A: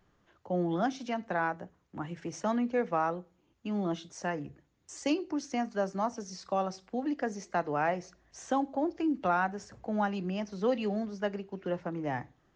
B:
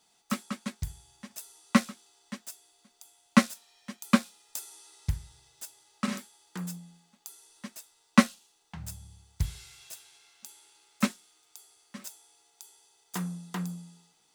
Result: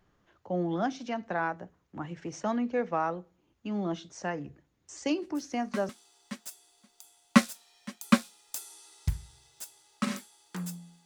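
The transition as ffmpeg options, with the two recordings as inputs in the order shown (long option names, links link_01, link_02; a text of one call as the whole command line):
ffmpeg -i cue0.wav -i cue1.wav -filter_complex "[1:a]asplit=2[link_01][link_02];[0:a]apad=whole_dur=11.05,atrim=end=11.05,atrim=end=5.892[link_03];[link_02]atrim=start=1.898:end=7.06[link_04];[link_01]atrim=start=1.08:end=1.9,asetpts=PTS-STARTPTS,volume=-15dB,afade=type=in:duration=0.004:curve=hsin,afade=type=out:start_time=0.816:duration=0.004:curve=hsin,adelay=5070[link_05];[link_03][link_04]acrossfade=duration=0.004:curve1=hsin:curve2=hsin[link_06];[link_06][link_05]amix=inputs=2:normalize=0" out.wav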